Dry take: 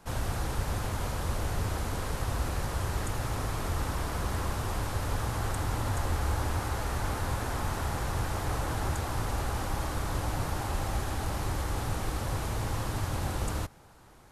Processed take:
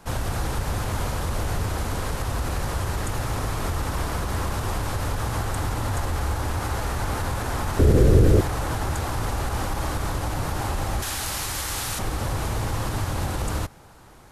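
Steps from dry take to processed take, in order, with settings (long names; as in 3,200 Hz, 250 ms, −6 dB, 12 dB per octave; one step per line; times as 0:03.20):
0:11.02–0:11.99: tilt shelving filter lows −9 dB, about 1,400 Hz
brickwall limiter −23.5 dBFS, peak gain reduction 5.5 dB
0:07.79–0:08.41: low shelf with overshoot 610 Hz +11.5 dB, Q 3
level +6.5 dB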